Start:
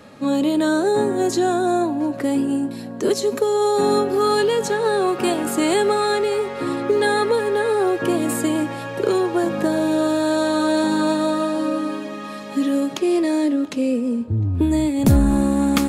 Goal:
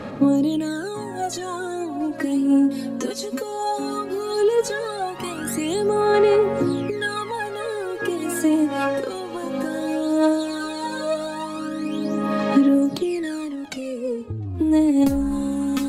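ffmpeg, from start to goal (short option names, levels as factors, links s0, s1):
-af "acompressor=threshold=0.0562:ratio=6,aphaser=in_gain=1:out_gain=1:delay=3.9:decay=0.76:speed=0.16:type=sinusoidal"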